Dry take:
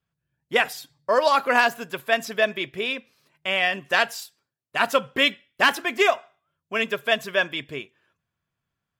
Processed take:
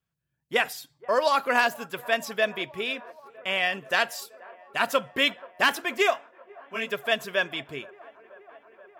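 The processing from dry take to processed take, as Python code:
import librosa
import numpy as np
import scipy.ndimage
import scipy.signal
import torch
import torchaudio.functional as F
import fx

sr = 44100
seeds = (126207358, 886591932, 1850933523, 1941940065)

y = fx.high_shelf(x, sr, hz=8100.0, db=4.0)
y = fx.echo_wet_bandpass(y, sr, ms=479, feedback_pct=81, hz=710.0, wet_db=-21.0)
y = fx.detune_double(y, sr, cents=16, at=(6.14, 6.88), fade=0.02)
y = y * librosa.db_to_amplitude(-3.5)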